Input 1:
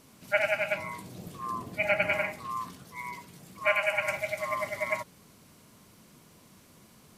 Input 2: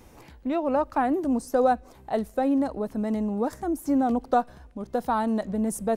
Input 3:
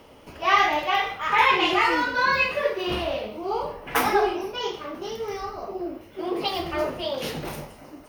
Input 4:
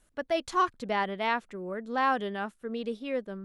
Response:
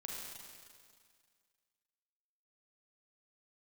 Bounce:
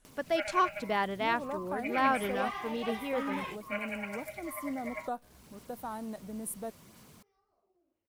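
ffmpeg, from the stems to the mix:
-filter_complex "[0:a]acompressor=mode=upward:threshold=-34dB:ratio=2.5,acrusher=bits=7:mix=0:aa=0.5,flanger=delay=0:depth=6.6:regen=-50:speed=0.72:shape=sinusoidal,adelay=50,volume=-7.5dB[link_01];[1:a]aexciter=amount=4.8:drive=6.4:freq=8900,adelay=750,volume=-14.5dB[link_02];[2:a]acompressor=threshold=-34dB:ratio=4,acontrast=38,adelay=1950,volume=-11.5dB[link_03];[3:a]volume=-1.5dB,asplit=2[link_04][link_05];[link_05]apad=whole_len=442394[link_06];[link_03][link_06]sidechaingate=range=-33dB:threshold=-55dB:ratio=16:detection=peak[link_07];[link_01][link_02][link_07][link_04]amix=inputs=4:normalize=0"

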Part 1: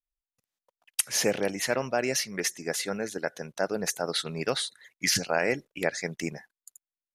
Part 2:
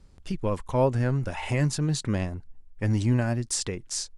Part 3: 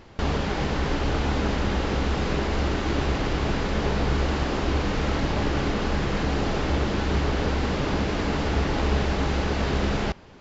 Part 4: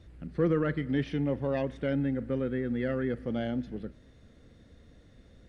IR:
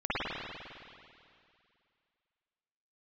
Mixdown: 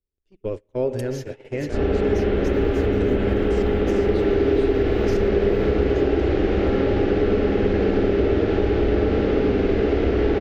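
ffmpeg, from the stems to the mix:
-filter_complex "[0:a]volume=-14dB,asplit=2[link_01][link_02];[link_02]volume=-9.5dB[link_03];[1:a]acrossover=split=2800[link_04][link_05];[link_05]acompressor=threshold=-42dB:ratio=4:attack=1:release=60[link_06];[link_04][link_06]amix=inputs=2:normalize=0,volume=-2.5dB,asplit=3[link_07][link_08][link_09];[link_08]volume=-18.5dB[link_10];[2:a]lowpass=6800,highshelf=frequency=2500:gain=-9,adelay=1500,volume=1.5dB,asplit=2[link_11][link_12];[link_12]volume=-5.5dB[link_13];[3:a]acompressor=threshold=-39dB:ratio=6,acrusher=bits=7:dc=4:mix=0:aa=0.000001,adelay=2150,volume=-3.5dB[link_14];[link_09]apad=whole_len=524855[link_15];[link_11][link_15]sidechaincompress=threshold=-54dB:ratio=3:attack=16:release=211[link_16];[4:a]atrim=start_sample=2205[link_17];[link_03][link_10][link_13]amix=inputs=3:normalize=0[link_18];[link_18][link_17]afir=irnorm=-1:irlink=0[link_19];[link_01][link_07][link_16][link_14][link_19]amix=inputs=5:normalize=0,equalizer=frequency=160:width_type=o:width=0.67:gain=-9,equalizer=frequency=400:width_type=o:width=0.67:gain=10,equalizer=frequency=1000:width_type=o:width=0.67:gain=-12,equalizer=frequency=10000:width_type=o:width=0.67:gain=-12,agate=range=-31dB:threshold=-27dB:ratio=16:detection=peak,acompressor=threshold=-18dB:ratio=2.5"

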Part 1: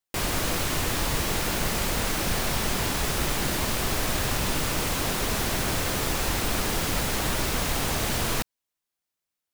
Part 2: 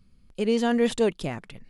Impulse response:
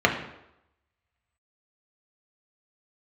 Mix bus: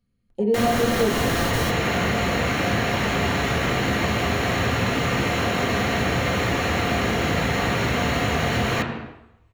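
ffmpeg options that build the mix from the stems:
-filter_complex "[0:a]adelay=400,volume=0dB,asplit=2[link_01][link_02];[link_02]volume=-6.5dB[link_03];[1:a]afwtdn=0.0398,highshelf=frequency=8500:gain=10.5,volume=-5.5dB,asplit=3[link_04][link_05][link_06];[link_05]volume=-5.5dB[link_07];[link_06]apad=whole_len=438248[link_08];[link_01][link_08]sidechaingate=range=-33dB:threshold=-54dB:ratio=16:detection=peak[link_09];[2:a]atrim=start_sample=2205[link_10];[link_03][link_07]amix=inputs=2:normalize=0[link_11];[link_11][link_10]afir=irnorm=-1:irlink=0[link_12];[link_09][link_04][link_12]amix=inputs=3:normalize=0,acompressor=threshold=-23dB:ratio=2"

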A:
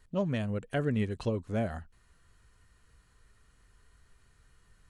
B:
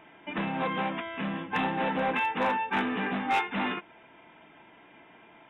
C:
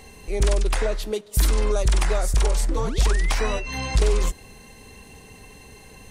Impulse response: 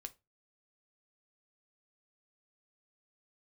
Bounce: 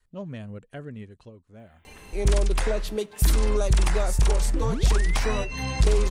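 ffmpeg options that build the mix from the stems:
-filter_complex "[0:a]volume=-6.5dB,afade=type=out:start_time=0.57:duration=0.76:silence=0.316228[link_01];[1:a]acompressor=threshold=-35dB:ratio=6,aemphasis=mode=production:type=riaa,adelay=1600,volume=-14dB[link_02];[2:a]adelay=1850,volume=-2.5dB[link_03];[link_01][link_02][link_03]amix=inputs=3:normalize=0,adynamicequalizer=threshold=0.0126:dfrequency=130:dqfactor=0.77:tfrequency=130:tqfactor=0.77:attack=5:release=100:ratio=0.375:range=3.5:mode=boostabove:tftype=bell"

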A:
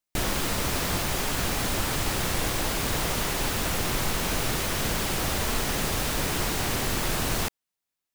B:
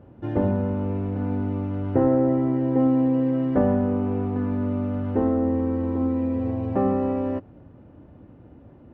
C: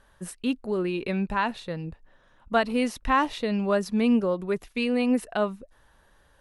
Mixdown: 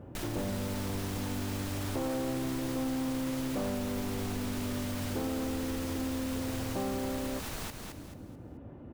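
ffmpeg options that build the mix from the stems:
ffmpeg -i stem1.wav -i stem2.wav -filter_complex "[0:a]volume=-0.5dB,asplit=2[link_01][link_02];[link_02]volume=-6dB[link_03];[1:a]asoftclip=type=tanh:threshold=-17.5dB,volume=1dB[link_04];[link_01]alimiter=level_in=1dB:limit=-24dB:level=0:latency=1,volume=-1dB,volume=0dB[link_05];[link_03]aecho=0:1:218|436|654|872|1090:1|0.32|0.102|0.0328|0.0105[link_06];[link_04][link_05][link_06]amix=inputs=3:normalize=0,acompressor=threshold=-37dB:ratio=2.5" out.wav

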